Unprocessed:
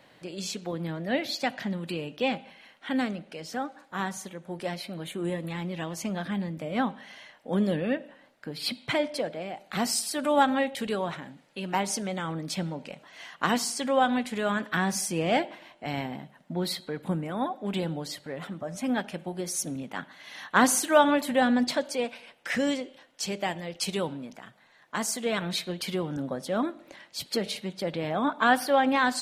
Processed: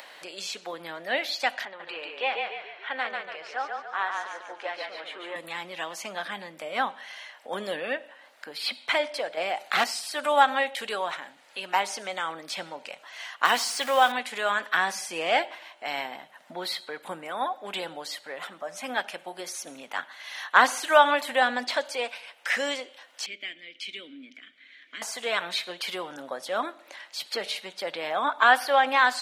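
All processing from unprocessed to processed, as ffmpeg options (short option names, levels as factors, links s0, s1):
-filter_complex "[0:a]asettb=1/sr,asplit=3[s0][s1][s2];[s0]atrim=end=1.654[s3];[s1]atrim=start=1.65:end=5.36,asetpts=PTS-STARTPTS,afade=t=in:d=0.004:c=qsin,afade=t=out:st=3.706:d=0.004:c=qsin,highpass=460,lowpass=2700,asplit=7[s4][s5][s6][s7][s8][s9][s10];[s5]adelay=143,afreqshift=-31,volume=0.668[s11];[s6]adelay=286,afreqshift=-62,volume=0.302[s12];[s7]adelay=429,afreqshift=-93,volume=0.135[s13];[s8]adelay=572,afreqshift=-124,volume=0.061[s14];[s9]adelay=715,afreqshift=-155,volume=0.0275[s15];[s10]adelay=858,afreqshift=-186,volume=0.0123[s16];[s4][s11][s12][s13][s14][s15][s16]amix=inputs=7:normalize=0,atrim=end_sample=163611[s17];[s2]atrim=start=5.356[s18];[s3][s17]acrossfade=d=0.004:c1=hsin:c2=qsin[s19];[s19][s18]acrossfade=d=0.004:c1=qsin:c2=hsin,asettb=1/sr,asplit=3[s20][s21][s22];[s20]atrim=end=9.374[s23];[s21]atrim=start=9.37:end=9.84,asetpts=PTS-STARTPTS,afade=t=in:d=0.004:c=qsin,afade=t=out:st=0.466:d=0.004:c=qsin,acontrast=73,aeval=exprs='0.158*(abs(mod(val(0)/0.158+3,4)-2)-1)':c=same[s24];[s22]atrim=start=9.836[s25];[s23][s24]acrossfade=d=0.004:c1=hsin:c2=qsin[s26];[s26][s25]acrossfade=d=0.004:c1=qsin:c2=hsin,asettb=1/sr,asplit=3[s27][s28][s29];[s27]atrim=end=13.454[s30];[s28]atrim=start=13.45:end=14.12,asetpts=PTS-STARTPTS,afade=t=in:d=0.004:c=qsin,afade=t=out:st=0.666:d=0.004:c=qsin,aeval=exprs='val(0)+0.5*0.0158*sgn(val(0))':c=same,highshelf=f=5700:g=11.5[s31];[s29]atrim=start=14.116[s32];[s30][s31]acrossfade=d=0.004:c1=hsin:c2=qsin[s33];[s33][s32]acrossfade=d=0.004:c1=qsin:c2=hsin,asettb=1/sr,asplit=3[s34][s35][s36];[s34]atrim=end=23.264[s37];[s35]atrim=start=23.26:end=25.02,asetpts=PTS-STARTPTS,afade=t=in:d=0.004:c=qsin,afade=t=out:st=1.756:d=0.004:c=qsin,acontrast=49,asplit=3[s38][s39][s40];[s38]bandpass=f=270:t=q:w=8,volume=1[s41];[s39]bandpass=f=2290:t=q:w=8,volume=0.501[s42];[s40]bandpass=f=3010:t=q:w=8,volume=0.355[s43];[s41][s42][s43]amix=inputs=3:normalize=0[s44];[s36]atrim=start=25.016[s45];[s37][s44]acrossfade=d=0.004:c1=hsin:c2=qsin[s46];[s46][s45]acrossfade=d=0.004:c1=qsin:c2=hsin,acrossover=split=4000[s47][s48];[s48]acompressor=threshold=0.00708:ratio=4:attack=1:release=60[s49];[s47][s49]amix=inputs=2:normalize=0,highpass=750,acompressor=mode=upward:threshold=0.00562:ratio=2.5,volume=1.88"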